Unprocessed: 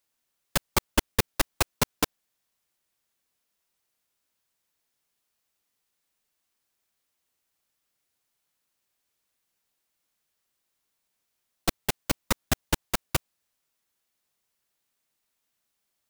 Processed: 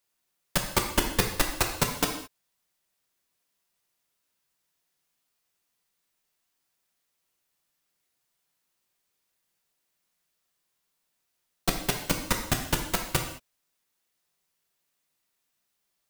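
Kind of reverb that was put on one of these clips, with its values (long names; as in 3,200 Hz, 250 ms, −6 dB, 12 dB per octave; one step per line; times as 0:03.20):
reverb whose tail is shaped and stops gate 240 ms falling, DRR 2.5 dB
level −1 dB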